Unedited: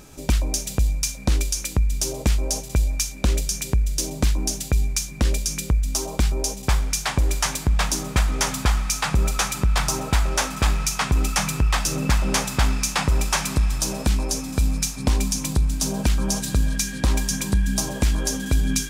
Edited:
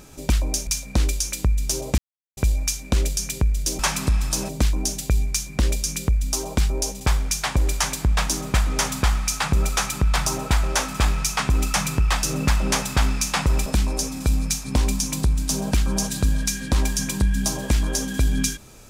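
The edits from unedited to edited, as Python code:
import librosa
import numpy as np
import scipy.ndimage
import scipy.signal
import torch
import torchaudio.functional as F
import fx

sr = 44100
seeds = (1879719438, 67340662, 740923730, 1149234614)

y = fx.edit(x, sr, fx.cut(start_s=0.67, length_s=0.32),
    fx.silence(start_s=2.3, length_s=0.39),
    fx.move(start_s=13.28, length_s=0.7, to_s=4.11), tone=tone)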